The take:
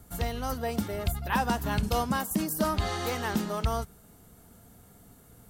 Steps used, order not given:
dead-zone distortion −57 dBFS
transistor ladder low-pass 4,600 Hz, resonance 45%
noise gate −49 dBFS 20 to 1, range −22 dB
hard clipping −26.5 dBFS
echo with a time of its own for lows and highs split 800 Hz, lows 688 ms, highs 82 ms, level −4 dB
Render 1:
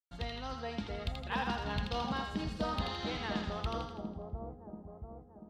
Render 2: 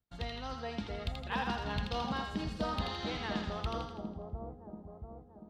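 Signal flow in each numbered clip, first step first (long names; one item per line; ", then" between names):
noise gate, then dead-zone distortion, then transistor ladder low-pass, then hard clipping, then echo with a time of its own for lows and highs
dead-zone distortion, then noise gate, then transistor ladder low-pass, then hard clipping, then echo with a time of its own for lows and highs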